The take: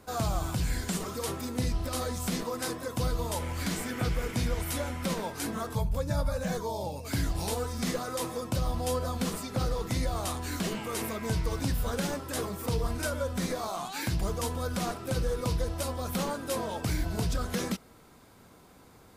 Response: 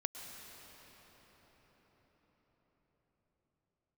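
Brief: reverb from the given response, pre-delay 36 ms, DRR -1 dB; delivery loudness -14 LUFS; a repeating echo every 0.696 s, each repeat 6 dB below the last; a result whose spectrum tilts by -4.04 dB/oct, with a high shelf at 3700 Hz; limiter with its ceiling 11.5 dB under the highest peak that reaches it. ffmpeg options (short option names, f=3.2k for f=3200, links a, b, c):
-filter_complex "[0:a]highshelf=f=3.7k:g=8.5,alimiter=level_in=2dB:limit=-24dB:level=0:latency=1,volume=-2dB,aecho=1:1:696|1392|2088|2784|3480|4176:0.501|0.251|0.125|0.0626|0.0313|0.0157,asplit=2[a][b];[1:a]atrim=start_sample=2205,adelay=36[c];[b][c]afir=irnorm=-1:irlink=0,volume=1dB[d];[a][d]amix=inputs=2:normalize=0,volume=16.5dB"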